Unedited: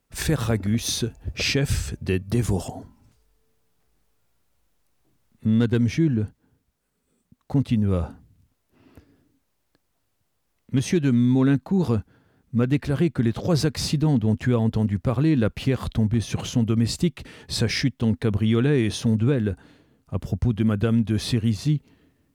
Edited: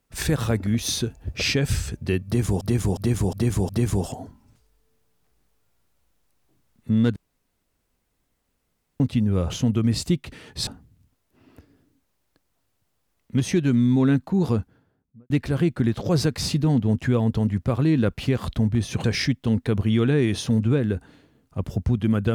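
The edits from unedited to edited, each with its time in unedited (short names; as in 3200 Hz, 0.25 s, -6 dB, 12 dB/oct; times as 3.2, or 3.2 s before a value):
2.25–2.61 loop, 5 plays
5.72–7.56 room tone
11.89–12.69 studio fade out
16.43–17.6 move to 8.06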